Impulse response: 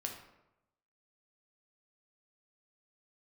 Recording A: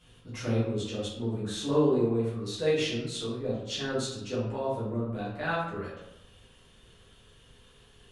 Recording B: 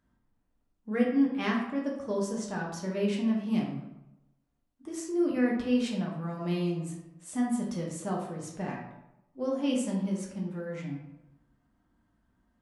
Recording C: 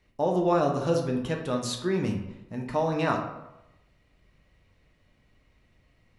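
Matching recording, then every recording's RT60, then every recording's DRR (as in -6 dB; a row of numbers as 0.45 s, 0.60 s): C; 0.90 s, 0.90 s, 0.90 s; -9.0 dB, -3.0 dB, 1.5 dB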